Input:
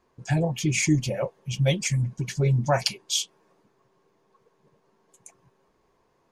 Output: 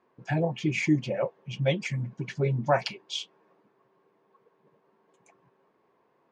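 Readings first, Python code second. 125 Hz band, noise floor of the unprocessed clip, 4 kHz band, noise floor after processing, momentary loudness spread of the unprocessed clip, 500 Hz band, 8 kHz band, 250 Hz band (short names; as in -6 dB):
-6.0 dB, -68 dBFS, -6.5 dB, -69 dBFS, 7 LU, 0.0 dB, -16.5 dB, -2.0 dB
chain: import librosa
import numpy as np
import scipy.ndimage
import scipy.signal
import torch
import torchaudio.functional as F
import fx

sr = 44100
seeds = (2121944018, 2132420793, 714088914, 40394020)

y = fx.bandpass_edges(x, sr, low_hz=180.0, high_hz=2700.0)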